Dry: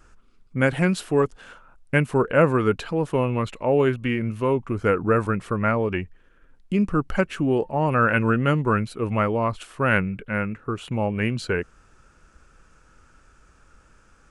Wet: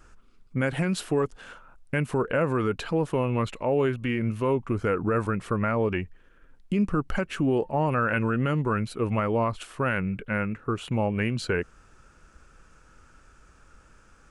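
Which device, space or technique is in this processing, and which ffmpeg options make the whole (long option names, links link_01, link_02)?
stacked limiters: -af "alimiter=limit=-12.5dB:level=0:latency=1:release=91,alimiter=limit=-16dB:level=0:latency=1:release=161"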